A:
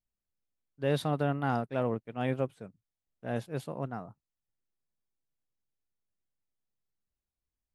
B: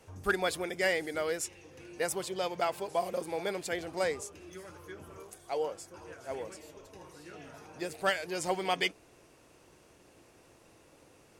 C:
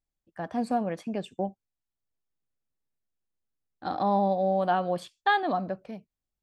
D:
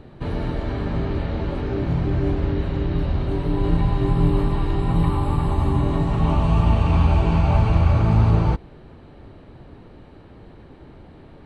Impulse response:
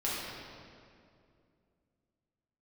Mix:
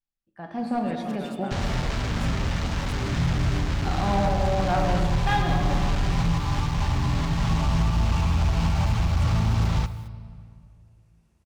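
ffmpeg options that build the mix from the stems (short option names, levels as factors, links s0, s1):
-filter_complex "[0:a]highpass=f=350:p=1,volume=0.473,asplit=2[s0][s1];[s1]volume=0.398[s2];[1:a]aeval=exprs='0.0299*(abs(mod(val(0)/0.0299+3,4)-2)-1)':c=same,adelay=800,volume=0.211[s3];[2:a]dynaudnorm=f=100:g=9:m=2.66,aeval=exprs='clip(val(0),-1,0.2)':c=same,volume=0.299,asplit=3[s4][s5][s6];[s5]volume=0.531[s7];[s6]volume=0.376[s8];[3:a]equalizer=f=350:w=2.9:g=-14,acrusher=bits=4:mix=0:aa=0.000001,adelay=1300,volume=0.891,asplit=3[s9][s10][s11];[s10]volume=0.0668[s12];[s11]volume=0.0708[s13];[s0][s4][s9]amix=inputs=3:normalize=0,lowpass=f=7100:w=0.5412,lowpass=f=7100:w=1.3066,alimiter=limit=0.224:level=0:latency=1:release=220,volume=1[s14];[4:a]atrim=start_sample=2205[s15];[s7][s12]amix=inputs=2:normalize=0[s16];[s16][s15]afir=irnorm=-1:irlink=0[s17];[s2][s8][s13]amix=inputs=3:normalize=0,aecho=0:1:219:1[s18];[s3][s14][s17][s18]amix=inputs=4:normalize=0,equalizer=f=520:t=o:w=0.97:g=-5,volume=6.68,asoftclip=hard,volume=0.15"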